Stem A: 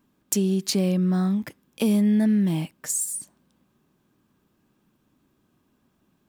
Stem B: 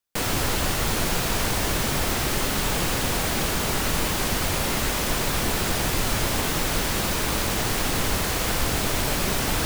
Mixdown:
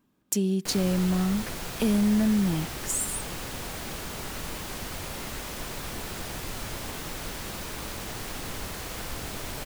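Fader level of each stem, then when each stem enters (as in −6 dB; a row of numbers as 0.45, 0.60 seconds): −3.0, −11.5 decibels; 0.00, 0.50 seconds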